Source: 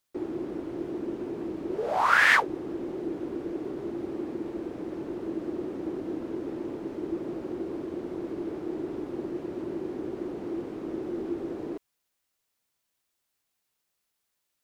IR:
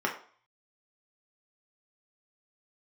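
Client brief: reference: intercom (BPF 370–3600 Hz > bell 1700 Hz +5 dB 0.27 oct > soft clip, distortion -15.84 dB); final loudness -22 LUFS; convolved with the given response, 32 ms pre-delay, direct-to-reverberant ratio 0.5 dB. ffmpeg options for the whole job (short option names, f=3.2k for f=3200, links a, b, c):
-filter_complex "[0:a]asplit=2[a][b];[1:a]atrim=start_sample=2205,adelay=32[c];[b][c]afir=irnorm=-1:irlink=0,volume=-10.5dB[d];[a][d]amix=inputs=2:normalize=0,highpass=370,lowpass=3.6k,equalizer=f=1.7k:t=o:w=0.27:g=5,asoftclip=threshold=-9dB,volume=6.5dB"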